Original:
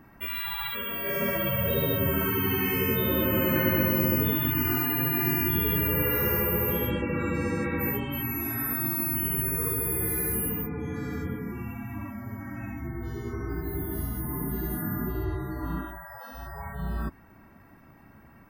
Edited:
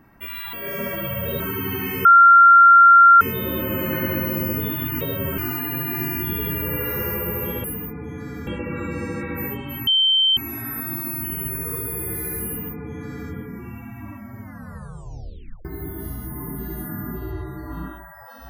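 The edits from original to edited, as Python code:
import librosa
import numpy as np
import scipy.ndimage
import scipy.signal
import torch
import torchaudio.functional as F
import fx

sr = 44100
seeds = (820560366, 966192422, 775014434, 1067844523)

y = fx.edit(x, sr, fx.cut(start_s=0.53, length_s=0.42),
    fx.move(start_s=1.82, length_s=0.37, to_s=4.64),
    fx.insert_tone(at_s=2.84, length_s=1.16, hz=1380.0, db=-6.5),
    fx.insert_tone(at_s=8.3, length_s=0.5, hz=3110.0, db=-14.0),
    fx.duplicate(start_s=10.4, length_s=0.83, to_s=6.9),
    fx.tape_stop(start_s=12.34, length_s=1.24), tone=tone)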